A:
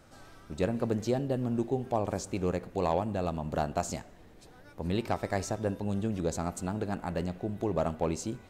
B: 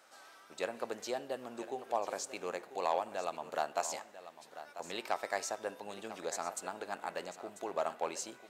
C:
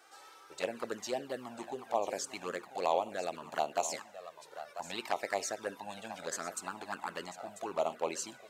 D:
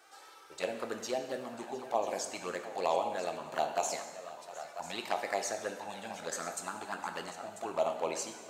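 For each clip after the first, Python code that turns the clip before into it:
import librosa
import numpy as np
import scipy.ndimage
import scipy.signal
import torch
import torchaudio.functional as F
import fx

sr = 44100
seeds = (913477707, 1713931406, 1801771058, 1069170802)

y1 = scipy.signal.sosfilt(scipy.signal.butter(2, 700.0, 'highpass', fs=sr, output='sos'), x)
y1 = y1 + 10.0 ** (-13.5 / 20.0) * np.pad(y1, (int(993 * sr / 1000.0), 0))[:len(y1)]
y2 = fx.env_flanger(y1, sr, rest_ms=2.7, full_db=-31.0)
y2 = y2 * librosa.db_to_amplitude(5.0)
y3 = y2 + 10.0 ** (-17.5 / 20.0) * np.pad(y2, (int(709 * sr / 1000.0), 0))[:len(y2)]
y3 = fx.rev_plate(y3, sr, seeds[0], rt60_s=1.2, hf_ratio=0.95, predelay_ms=0, drr_db=6.0)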